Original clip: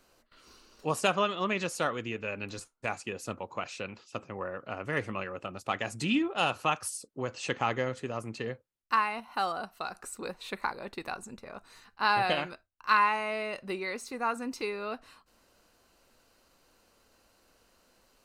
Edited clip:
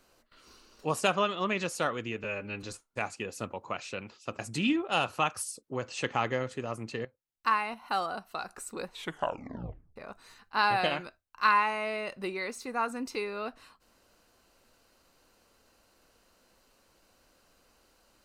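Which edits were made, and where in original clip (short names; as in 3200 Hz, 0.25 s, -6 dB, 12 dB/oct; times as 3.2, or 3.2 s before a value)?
2.24–2.5 stretch 1.5×
4.26–5.85 cut
8.51–8.99 fade in, from -15.5 dB
10.39 tape stop 1.03 s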